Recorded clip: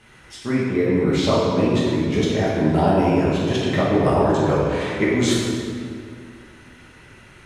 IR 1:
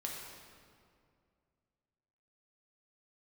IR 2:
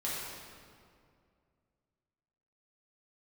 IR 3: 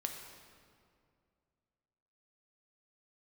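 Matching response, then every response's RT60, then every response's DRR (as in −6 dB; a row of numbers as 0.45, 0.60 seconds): 2; 2.3, 2.3, 2.3 seconds; −2.0, −8.0, 2.5 decibels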